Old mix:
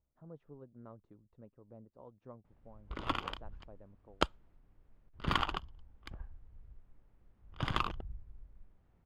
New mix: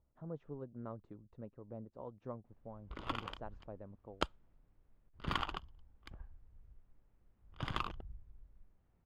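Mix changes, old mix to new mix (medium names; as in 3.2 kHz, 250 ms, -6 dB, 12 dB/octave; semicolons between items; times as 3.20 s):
speech +6.5 dB; background -5.0 dB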